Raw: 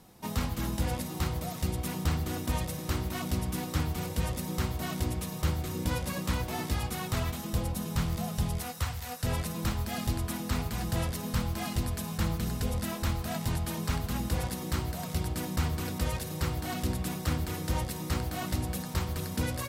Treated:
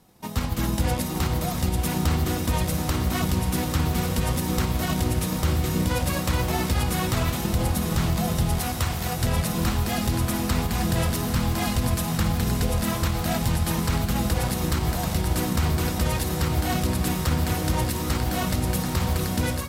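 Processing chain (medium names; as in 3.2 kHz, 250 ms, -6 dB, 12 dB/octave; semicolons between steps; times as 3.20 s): echo that smears into a reverb 922 ms, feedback 72%, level -9.5 dB; level rider gain up to 10.5 dB; transient shaper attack +5 dB, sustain +1 dB; peak limiter -11 dBFS, peak gain reduction 10 dB; trim -2.5 dB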